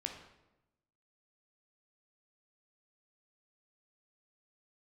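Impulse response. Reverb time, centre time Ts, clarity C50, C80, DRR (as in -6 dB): 0.95 s, 27 ms, 6.0 dB, 8.5 dB, 3.0 dB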